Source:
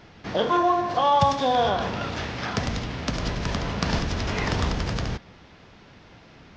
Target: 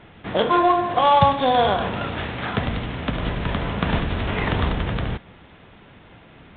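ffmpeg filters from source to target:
ffmpeg -i in.wav -af "aeval=exprs='0.531*(cos(1*acos(clip(val(0)/0.531,-1,1)))-cos(1*PI/2))+0.015*(cos(7*acos(clip(val(0)/0.531,-1,1)))-cos(7*PI/2))':channel_layout=same,volume=4.5dB" -ar 8000 -c:a adpcm_ima_wav out.wav

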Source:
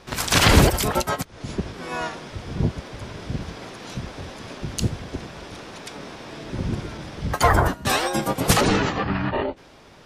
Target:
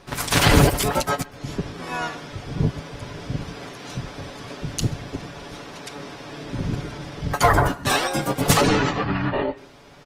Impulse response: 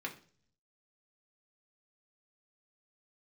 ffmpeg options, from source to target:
-filter_complex "[0:a]aecho=1:1:7:0.41,asplit=2[link_01][link_02];[1:a]atrim=start_sample=2205,adelay=129[link_03];[link_02][link_03]afir=irnorm=-1:irlink=0,volume=-20.5dB[link_04];[link_01][link_04]amix=inputs=2:normalize=0" -ar 48000 -c:a libopus -b:a 24k

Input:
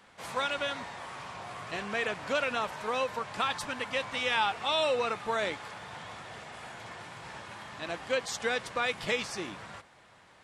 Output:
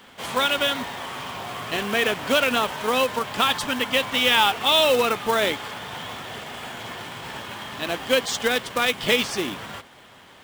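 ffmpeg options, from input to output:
ffmpeg -i in.wav -filter_complex "[0:a]equalizer=frequency=250:width_type=o:width=0.33:gain=7,equalizer=frequency=400:width_type=o:width=0.33:gain=4,equalizer=frequency=3150:width_type=o:width=0.33:gain=8,acrusher=bits=3:mode=log:mix=0:aa=0.000001,asettb=1/sr,asplit=3[link_01][link_02][link_03];[link_01]atrim=end=8.424[link_04];[link_02]atrim=start=8.42:end=9.05,asetpts=PTS-STARTPTS,afade=type=in:duration=0.004:curve=qsin,afade=type=out:start_time=0.626:duration=0.004:curve=qsin,aeval=exprs='0.158*(cos(1*acos(clip(val(0)/0.158,-1,1)))-cos(1*PI/2))+0.0126*(cos(3*acos(clip(val(0)/0.158,-1,1)))-cos(3*PI/2))':channel_layout=same[link_05];[link_03]atrim=start=9.046[link_06];[link_04][link_05]acrossfade=duration=0.004:curve1=hsin:curve2=qsin[link_07];[link_07][link_06]acrossfade=duration=0.004:curve1=qsin:curve2=hsin,volume=8dB" out.wav

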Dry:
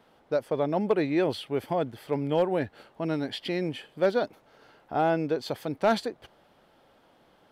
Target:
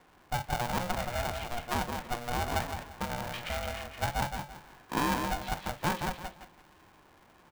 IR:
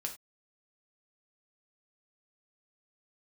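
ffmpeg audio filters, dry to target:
-filter_complex "[0:a]equalizer=frequency=1200:width=0.36:gain=-10,acompressor=threshold=-34dB:ratio=6,acrossover=split=590 2500:gain=0.178 1 0.112[link_01][link_02][link_03];[link_01][link_02][link_03]amix=inputs=3:normalize=0,asetrate=37084,aresample=44100,atempo=1.18921,highpass=130,lowpass=3500,aecho=1:1:169|338|507|676:0.562|0.157|0.0441|0.0123,asplit=2[link_04][link_05];[1:a]atrim=start_sample=2205,atrim=end_sample=3087[link_06];[link_05][link_06]afir=irnorm=-1:irlink=0,volume=2.5dB[link_07];[link_04][link_07]amix=inputs=2:normalize=0,aeval=exprs='val(0)*sgn(sin(2*PI*360*n/s))':channel_layout=same,volume=6.5dB"

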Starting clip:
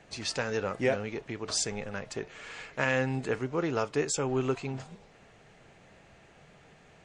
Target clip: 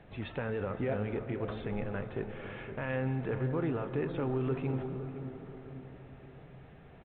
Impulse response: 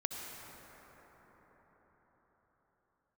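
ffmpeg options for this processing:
-filter_complex "[0:a]lowpass=frequency=1800:poles=1,lowshelf=frequency=170:gain=8,alimiter=level_in=1dB:limit=-24dB:level=0:latency=1:release=25,volume=-1dB,asplit=2[link_01][link_02];[link_02]adelay=514,lowpass=frequency=950:poles=1,volume=-9.5dB,asplit=2[link_03][link_04];[link_04]adelay=514,lowpass=frequency=950:poles=1,volume=0.35,asplit=2[link_05][link_06];[link_06]adelay=514,lowpass=frequency=950:poles=1,volume=0.35,asplit=2[link_07][link_08];[link_08]adelay=514,lowpass=frequency=950:poles=1,volume=0.35[link_09];[link_01][link_03][link_05][link_07][link_09]amix=inputs=5:normalize=0,asplit=2[link_10][link_11];[1:a]atrim=start_sample=2205,highshelf=frequency=4900:gain=-10[link_12];[link_11][link_12]afir=irnorm=-1:irlink=0,volume=-6.5dB[link_13];[link_10][link_13]amix=inputs=2:normalize=0,volume=-3.5dB" -ar 8000 -c:a pcm_alaw

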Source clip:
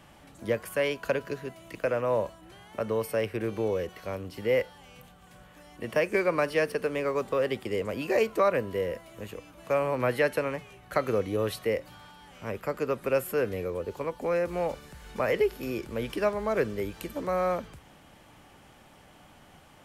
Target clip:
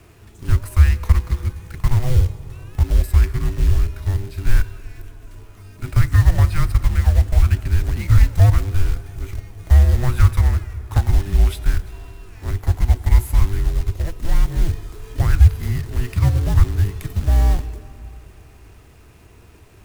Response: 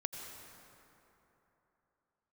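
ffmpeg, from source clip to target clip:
-filter_complex "[0:a]acrusher=bits=2:mode=log:mix=0:aa=0.000001,aeval=exprs='0.299*(cos(1*acos(clip(val(0)/0.299,-1,1)))-cos(1*PI/2))+0.0422*(cos(5*acos(clip(val(0)/0.299,-1,1)))-cos(5*PI/2))':channel_layout=same,afreqshift=-490,lowshelf=frequency=140:width_type=q:width=1.5:gain=12,asplit=2[link_01][link_02];[1:a]atrim=start_sample=2205[link_03];[link_02][link_03]afir=irnorm=-1:irlink=0,volume=-10.5dB[link_04];[link_01][link_04]amix=inputs=2:normalize=0,volume=-3.5dB"

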